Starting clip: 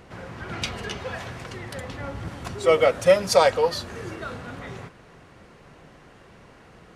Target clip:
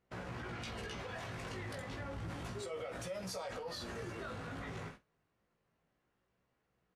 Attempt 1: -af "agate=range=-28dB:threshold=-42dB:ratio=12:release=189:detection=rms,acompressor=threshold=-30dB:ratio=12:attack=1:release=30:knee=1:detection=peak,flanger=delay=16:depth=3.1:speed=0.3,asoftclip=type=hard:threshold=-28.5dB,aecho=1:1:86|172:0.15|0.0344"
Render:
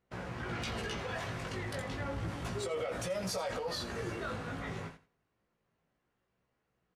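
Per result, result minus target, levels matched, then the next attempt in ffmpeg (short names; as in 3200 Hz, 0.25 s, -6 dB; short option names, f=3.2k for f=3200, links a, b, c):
echo 38 ms late; compressor: peak gain reduction -6.5 dB
-af "agate=range=-28dB:threshold=-42dB:ratio=12:release=189:detection=rms,acompressor=threshold=-30dB:ratio=12:attack=1:release=30:knee=1:detection=peak,flanger=delay=16:depth=3.1:speed=0.3,asoftclip=type=hard:threshold=-28.5dB,aecho=1:1:48|96:0.15|0.0344"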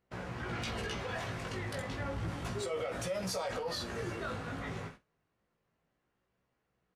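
compressor: peak gain reduction -6.5 dB
-af "agate=range=-28dB:threshold=-42dB:ratio=12:release=189:detection=rms,acompressor=threshold=-37dB:ratio=12:attack=1:release=30:knee=1:detection=peak,flanger=delay=16:depth=3.1:speed=0.3,asoftclip=type=hard:threshold=-28.5dB,aecho=1:1:48|96:0.15|0.0344"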